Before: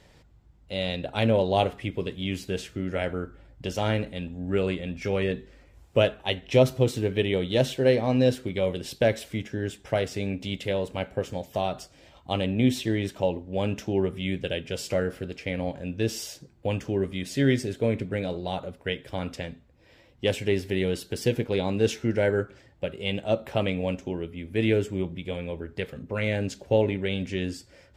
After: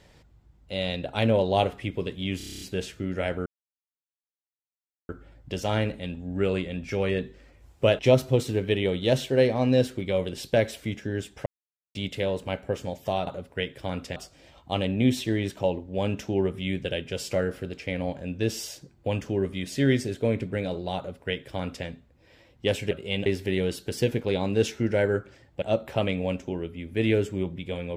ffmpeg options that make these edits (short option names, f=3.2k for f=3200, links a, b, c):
-filter_complex "[0:a]asplit=18[a][b][c][d][e][f][g][h][i][j][k][l][m][n][o][p][q][r];[a]atrim=end=2.402[s];[b]atrim=start=2.368:end=2.402[t];[c]atrim=start=2.368:end=2.402[u];[d]atrim=start=2.368:end=2.402[v];[e]atrim=start=2.368:end=2.402[w];[f]atrim=start=2.368:end=2.402[x];[g]atrim=start=2.368:end=2.402[y];[h]atrim=start=2.368:end=2.402[z];[i]atrim=start=2.368:end=3.22,asetpts=PTS-STARTPTS,afade=t=out:st=0.848:d=0.004:c=hsin,apad=pad_dur=1.63[aa];[j]atrim=start=3.22:end=6.122,asetpts=PTS-STARTPTS,afade=t=in:d=0.004:c=hsin[ab];[k]atrim=start=6.468:end=9.94,asetpts=PTS-STARTPTS,afade=t=out:st=3.468:d=0.004:c=hsin[ac];[l]atrim=start=9.94:end=10.43,asetpts=PTS-STARTPTS,volume=0[ad];[m]atrim=start=10.43:end=11.752,asetpts=PTS-STARTPTS,afade=t=in:d=0.004:c=hsin[ae];[n]atrim=start=18.558:end=19.452[af];[o]atrim=start=11.748:end=20.502[ag];[p]atrim=start=22.858:end=23.212[ah];[q]atrim=start=20.498:end=22.862[ai];[r]atrim=start=23.208[aj];[s][t]acrossfade=d=0.004:c1=hsin:c2=hsin[ak];[ak][u]acrossfade=d=0.004:c1=hsin:c2=hsin[al];[al][v]acrossfade=d=0.004:c1=hsin:c2=hsin[am];[am][w]acrossfade=d=0.004:c1=hsin:c2=hsin[an];[an][x]acrossfade=d=0.004:c1=hsin:c2=hsin[ao];[ao][y]acrossfade=d=0.004:c1=hsin:c2=hsin[ap];[ap][z]acrossfade=d=0.004:c1=hsin:c2=hsin[aq];[aa][ab]concat=n=2:v=0:a=1[ar];[aq][ar]acrossfade=d=0.004:c1=hsin:c2=hsin[as];[ac][ad][ae]concat=n=3:v=0:a=1[at];[as][at]acrossfade=d=0.004:c1=hsin:c2=hsin[au];[au][af]acrossfade=d=0.004:c1=hsin:c2=hsin[av];[av][ag]acrossfade=d=0.004:c1=hsin:c2=hsin[aw];[aw][ah]acrossfade=d=0.004:c1=hsin:c2=hsin[ax];[ax][ai]acrossfade=d=0.004:c1=hsin:c2=hsin[ay];[ay][aj]acrossfade=d=0.004:c1=hsin:c2=hsin"